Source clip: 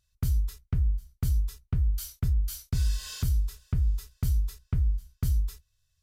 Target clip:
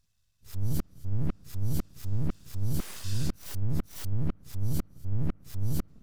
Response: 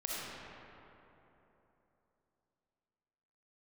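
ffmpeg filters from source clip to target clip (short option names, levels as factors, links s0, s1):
-filter_complex "[0:a]areverse,asplit=2[s0][s1];[1:a]atrim=start_sample=2205,lowpass=2100[s2];[s1][s2]afir=irnorm=-1:irlink=0,volume=0.0596[s3];[s0][s3]amix=inputs=2:normalize=0,aeval=exprs='abs(val(0))':c=same"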